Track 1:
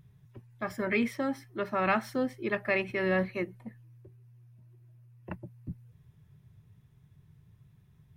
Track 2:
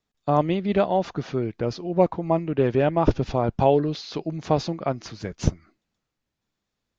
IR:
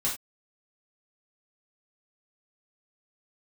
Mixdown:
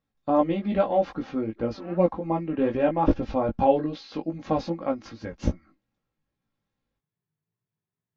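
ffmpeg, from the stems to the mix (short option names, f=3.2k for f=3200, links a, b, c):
-filter_complex "[0:a]highpass=280,volume=-15dB[a];[1:a]aecho=1:1:3.7:0.66,volume=-0.5dB,asplit=2[b][c];[c]apad=whole_len=360082[d];[a][d]sidechaincompress=threshold=-24dB:ratio=8:attack=5.2:release=460[e];[e][b]amix=inputs=2:normalize=0,aemphasis=mode=reproduction:type=75fm,flanger=delay=17:depth=2.3:speed=2.5"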